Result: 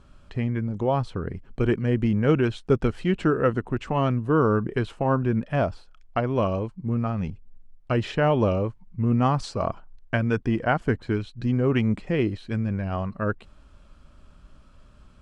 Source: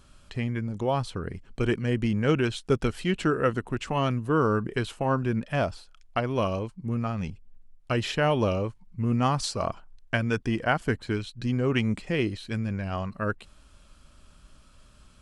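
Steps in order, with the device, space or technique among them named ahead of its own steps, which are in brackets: through cloth (LPF 9200 Hz 12 dB/oct; high shelf 2500 Hz -12.5 dB); gain +3.5 dB

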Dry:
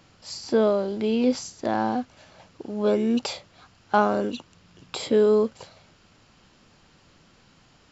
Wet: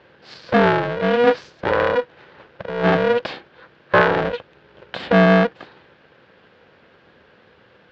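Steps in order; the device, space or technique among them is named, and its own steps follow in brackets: ring modulator pedal into a guitar cabinet (polarity switched at an audio rate 240 Hz; speaker cabinet 88–3600 Hz, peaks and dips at 190 Hz +4 dB, 510 Hz +8 dB, 1600 Hz +8 dB); gain +3 dB

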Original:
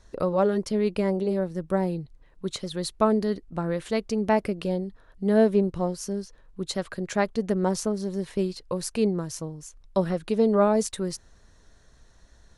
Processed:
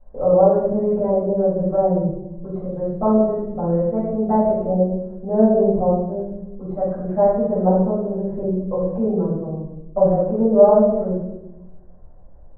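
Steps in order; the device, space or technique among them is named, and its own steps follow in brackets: 7.38–8.26 high shelf 4100 Hz +9 dB; under water (LPF 990 Hz 24 dB/oct; bell 610 Hz +9 dB 0.51 oct); shoebox room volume 350 m³, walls mixed, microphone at 6.6 m; gain -11 dB

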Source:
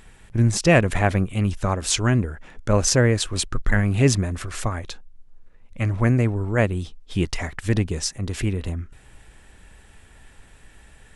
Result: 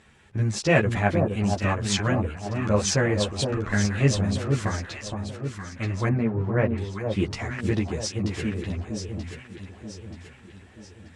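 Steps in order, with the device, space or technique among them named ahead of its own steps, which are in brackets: string-machine ensemble chorus (ensemble effect; LPF 6500 Hz 12 dB/oct); echo with dull and thin repeats by turns 0.466 s, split 1000 Hz, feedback 66%, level -4 dB; 6.09–6.78 LPF 2000 Hz 12 dB/oct; HPF 83 Hz

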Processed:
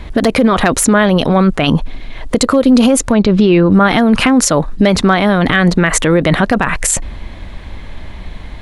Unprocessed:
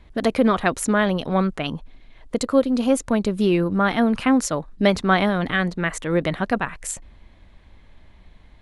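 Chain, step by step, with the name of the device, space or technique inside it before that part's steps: loud club master (compressor 3:1, threshold -21 dBFS, peak gain reduction 8 dB; hard clip -13.5 dBFS, distortion -31 dB; maximiser +22 dB); 3.12–3.72 LPF 4900 Hz 24 dB/oct; gain -1 dB

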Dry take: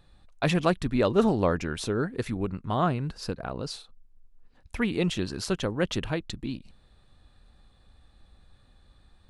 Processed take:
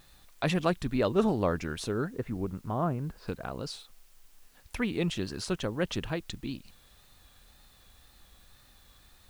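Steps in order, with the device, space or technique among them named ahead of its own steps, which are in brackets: 2.1–3.28 Bessel low-pass 1100 Hz, order 2; noise-reduction cassette on a plain deck (mismatched tape noise reduction encoder only; wow and flutter; white noise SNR 31 dB); gain -3.5 dB

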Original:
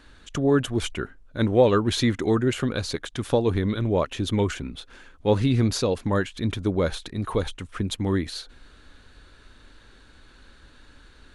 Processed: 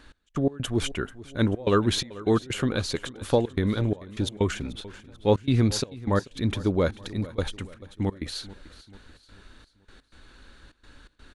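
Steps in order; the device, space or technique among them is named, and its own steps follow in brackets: trance gate with a delay (step gate "x..x.xxxxx.xx.xx" 126 bpm -24 dB; feedback echo 0.438 s, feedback 47%, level -18.5 dB)

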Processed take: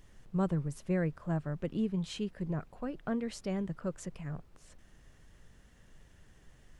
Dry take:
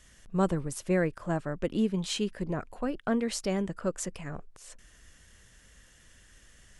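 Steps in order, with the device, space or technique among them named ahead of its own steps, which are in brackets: car interior (bell 150 Hz +9 dB 0.59 oct; high shelf 4800 Hz -8 dB; brown noise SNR 20 dB); gain -7 dB

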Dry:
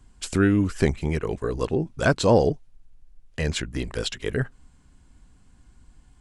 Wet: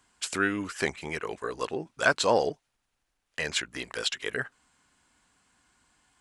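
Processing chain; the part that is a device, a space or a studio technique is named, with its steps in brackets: filter by subtraction (in parallel: LPF 1400 Hz 12 dB/oct + phase invert)

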